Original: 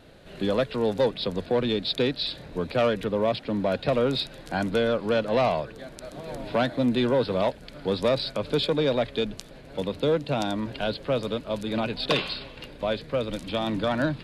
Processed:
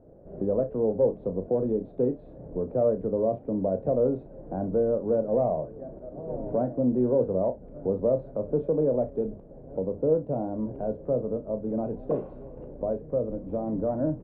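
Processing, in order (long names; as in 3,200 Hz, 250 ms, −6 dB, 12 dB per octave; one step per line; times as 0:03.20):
camcorder AGC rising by 12 dB per second
transistor ladder low-pass 720 Hz, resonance 30%
on a send: ambience of single reflections 32 ms −9.5 dB, 61 ms −18 dB
on the sum: level +3.5 dB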